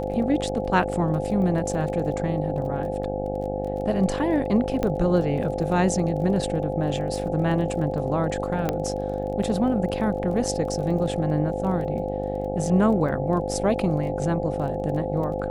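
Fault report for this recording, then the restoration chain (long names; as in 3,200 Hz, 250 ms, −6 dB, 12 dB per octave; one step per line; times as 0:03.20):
mains buzz 50 Hz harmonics 17 −30 dBFS
surface crackle 22 per second −34 dBFS
whistle 520 Hz −29 dBFS
0:04.83: click −13 dBFS
0:08.69: click −10 dBFS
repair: click removal
hum removal 50 Hz, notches 17
notch filter 520 Hz, Q 30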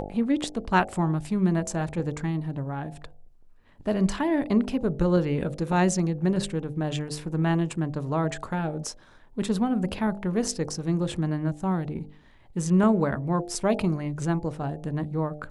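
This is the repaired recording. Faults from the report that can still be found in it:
none of them is left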